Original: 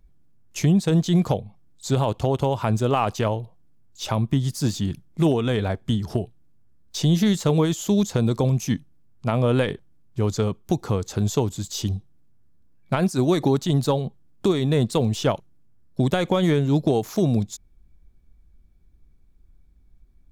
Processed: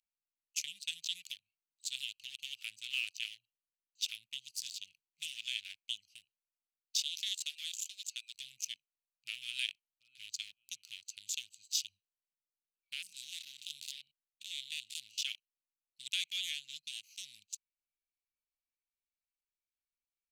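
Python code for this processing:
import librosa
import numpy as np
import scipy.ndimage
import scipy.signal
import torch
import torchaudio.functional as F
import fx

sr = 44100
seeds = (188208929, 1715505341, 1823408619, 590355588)

y = fx.steep_highpass(x, sr, hz=400.0, slope=96, at=(6.97, 8.35))
y = fx.echo_throw(y, sr, start_s=9.44, length_s=0.82, ms=560, feedback_pct=30, wet_db=-15.0)
y = fx.spec_steps(y, sr, hold_ms=100, at=(12.93, 15.18))
y = fx.wiener(y, sr, points=25)
y = scipy.signal.sosfilt(scipy.signal.ellip(4, 1.0, 60, 2600.0, 'highpass', fs=sr, output='sos'), y)
y = F.gain(torch.from_numpy(y), 2.0).numpy()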